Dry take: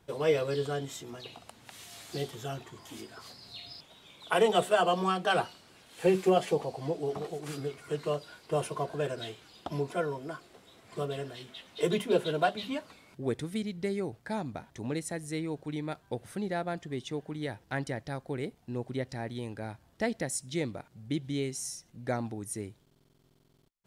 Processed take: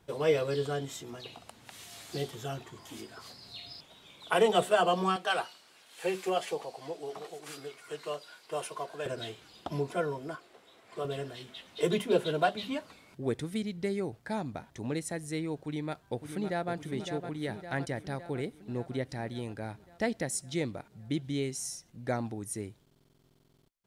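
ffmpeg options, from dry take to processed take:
-filter_complex "[0:a]asettb=1/sr,asplit=3[s0][s1][s2];[s0]atrim=end=5.164[s3];[s1]atrim=start=5.16:end=9.06,asetpts=PTS-STARTPTS,afade=t=in:d=0.004:c=qsin,afade=t=out:st=3.896:d=0.004:c=qsin,highpass=f=840:p=1[s4];[s2]atrim=start=9.056[s5];[s3][s4]acrossfade=d=0.004:c1=hsin:c2=qsin[s6];[s6][s5]acrossfade=d=0.004:c1=qsin:c2=hsin,asettb=1/sr,asplit=3[s7][s8][s9];[s7]atrim=end=10.354[s10];[s8]atrim=start=10.35:end=11.05,asetpts=PTS-STARTPTS,afade=t=in:d=0.004:c=qsin,afade=t=out:st=0.696:d=0.004:c=qsin,bass=f=250:g=-12,treble=f=4000:g=-5[s11];[s9]atrim=start=11.046[s12];[s10][s11]acrossfade=d=0.004:c1=hsin:c2=qsin[s13];[s13][s12]acrossfade=d=0.004:c1=qsin:c2=hsin,asplit=2[s14][s15];[s15]afade=t=in:st=15.62:d=0.01,afade=t=out:st=16.73:d=0.01,aecho=0:1:560|1120|1680|2240|2800|3360|3920|4480|5040:0.398107|0.25877|0.1682|0.10933|0.0710646|0.046192|0.0300248|0.0195161|0.0126855[s16];[s14][s16]amix=inputs=2:normalize=0"

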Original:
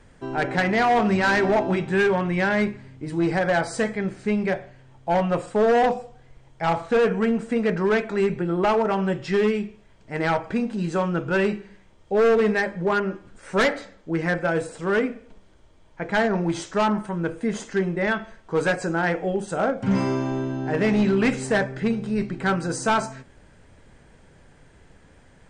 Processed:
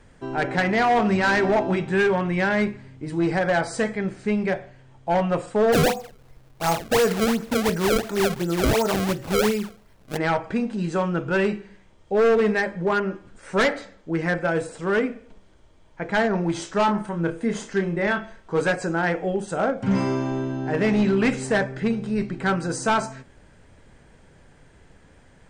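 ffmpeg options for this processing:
-filter_complex "[0:a]asplit=3[s0][s1][s2];[s0]afade=t=out:st=5.72:d=0.02[s3];[s1]acrusher=samples=28:mix=1:aa=0.000001:lfo=1:lforange=44.8:lforate=2.8,afade=t=in:st=5.72:d=0.02,afade=t=out:st=10.16:d=0.02[s4];[s2]afade=t=in:st=10.16:d=0.02[s5];[s3][s4][s5]amix=inputs=3:normalize=0,asettb=1/sr,asplit=3[s6][s7][s8];[s6]atrim=end=16.594[s9];[s7]atrim=start=16.59:end=18.61,asetpts=PTS-STARTPTS,afade=t=in:d=0.004:c=qsin,afade=t=out:st=2.016:d=0.004:c=qsin,asplit=2[s10][s11];[s11]adelay=30,volume=0.398[s12];[s10][s12]amix=inputs=2:normalize=0,atrim=end_sample=89082[s13];[s8]atrim=start=18.606[s14];[s9][s13]acrossfade=d=0.004:c1=hsin:c2=qsin[s15];[s15][s14]acrossfade=d=0.004:c1=qsin:c2=hsin"

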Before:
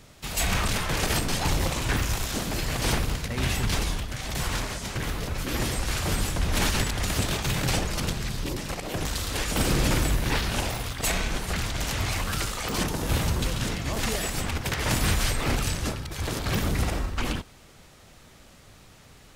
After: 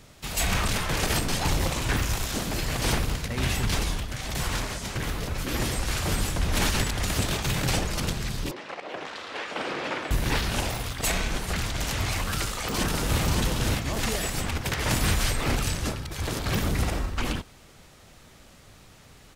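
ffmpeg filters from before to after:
-filter_complex "[0:a]asettb=1/sr,asplit=3[s0][s1][s2];[s0]atrim=end=8.514[s3];[s1]atrim=start=8.51:end=10.11,asetpts=PTS-STARTPTS,afade=t=in:d=0.004:c=qsin,afade=t=out:st=1.596:d=0.004:c=qsin,highpass=450,lowpass=2700[s4];[s2]atrim=start=10.106[s5];[s3][s4]acrossfade=d=0.004:c1=hsin:c2=qsin[s6];[s6][s5]acrossfade=d=0.004:c1=qsin:c2=hsin,asplit=2[s7][s8];[s8]afade=t=in:st=12.22:d=0.01,afade=t=out:st=13.22:d=0.01,aecho=0:1:570|1140|1710:0.707946|0.106192|0.0159288[s9];[s7][s9]amix=inputs=2:normalize=0"

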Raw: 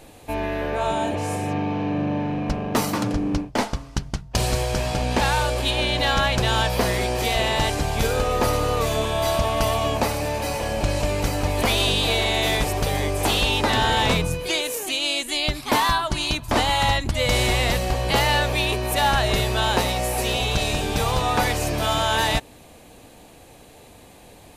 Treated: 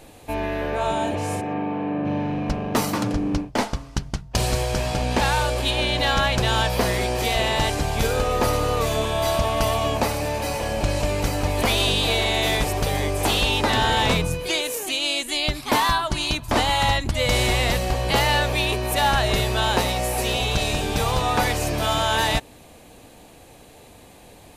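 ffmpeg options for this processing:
-filter_complex "[0:a]asplit=3[s0][s1][s2];[s0]afade=t=out:st=1.4:d=0.02[s3];[s1]highpass=180,lowpass=2200,afade=t=in:st=1.4:d=0.02,afade=t=out:st=2.04:d=0.02[s4];[s2]afade=t=in:st=2.04:d=0.02[s5];[s3][s4][s5]amix=inputs=3:normalize=0"

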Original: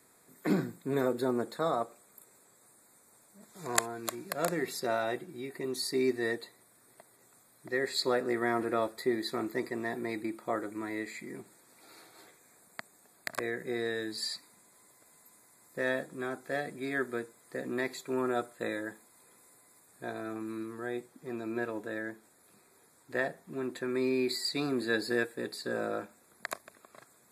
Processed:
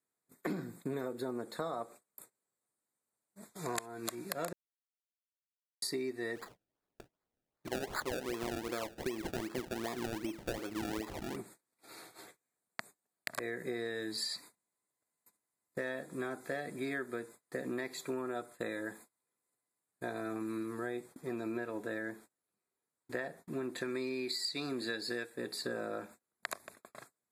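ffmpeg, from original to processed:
-filter_complex "[0:a]asplit=3[s0][s1][s2];[s0]afade=t=out:st=6.35:d=0.02[s3];[s1]acrusher=samples=29:mix=1:aa=0.000001:lfo=1:lforange=29:lforate=2.6,afade=t=in:st=6.35:d=0.02,afade=t=out:st=11.35:d=0.02[s4];[s2]afade=t=in:st=11.35:d=0.02[s5];[s3][s4][s5]amix=inputs=3:normalize=0,asettb=1/sr,asplit=3[s6][s7][s8];[s6]atrim=end=23.784[s9];[s7]atrim=start=23.78:end=25.3,asetpts=PTS-STARTPTS,afade=t=in:d=0.004:c=qsin,afade=t=out:st=1.516:d=0.004:c=qsin,equalizer=f=4700:w=0.56:g=7[s10];[s8]atrim=start=25.296[s11];[s9][s10]acrossfade=d=0.004:c1=hsin:c2=qsin[s12];[s12][s11]acrossfade=d=0.004:c1=qsin:c2=hsin,asplit=3[s13][s14][s15];[s13]atrim=end=4.53,asetpts=PTS-STARTPTS,afade=t=out:st=4.526:d=0.004:c=hsin[s16];[s14]atrim=start=4.53:end=5.82,asetpts=PTS-STARTPTS,volume=0[s17];[s15]atrim=start=5.82,asetpts=PTS-STARTPTS,afade=t=in:d=0.004:c=hsin[s18];[s16][s17][s18]concat=n=3:v=0:a=1,acompressor=threshold=0.0141:ratio=12,agate=range=0.0316:threshold=0.00158:ratio=16:detection=peak,volume=1.41"

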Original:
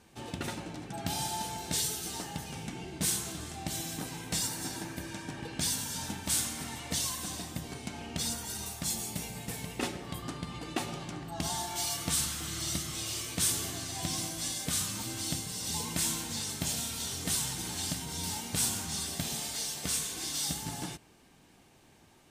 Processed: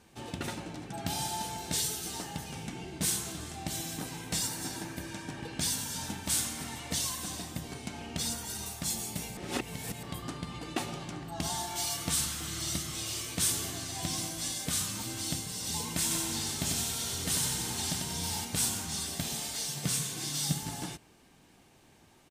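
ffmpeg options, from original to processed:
-filter_complex "[0:a]asplit=3[s0][s1][s2];[s0]afade=t=out:st=16.1:d=0.02[s3];[s1]aecho=1:1:94|188|282|376|470|564|658:0.631|0.334|0.177|0.0939|0.0498|0.0264|0.014,afade=t=in:st=16.1:d=0.02,afade=t=out:st=18.44:d=0.02[s4];[s2]afade=t=in:st=18.44:d=0.02[s5];[s3][s4][s5]amix=inputs=3:normalize=0,asettb=1/sr,asplit=3[s6][s7][s8];[s6]atrim=end=19.684[s9];[s7]atrim=start=19.68:end=20.63,asetpts=PTS-STARTPTS,afade=t=in:d=0.004:c=qsin,afade=t=out:st=0.946:d=0.004:c=qsin,highpass=f=130:t=q:w=4.9[s10];[s8]atrim=start=20.626[s11];[s9][s10]acrossfade=d=0.004:c1=hsin:c2=qsin[s12];[s12][s11]acrossfade=d=0.004:c1=qsin:c2=hsin,asplit=3[s13][s14][s15];[s13]atrim=end=9.372[s16];[s14]atrim=start=9.368:end=10.032,asetpts=PTS-STARTPTS,areverse[s17];[s15]atrim=start=10.028[s18];[s16][s17]acrossfade=d=0.004:c1=hsin:c2=hsin[s19];[s19][s18]acrossfade=d=0.004:c1=hsin:c2=hsin"

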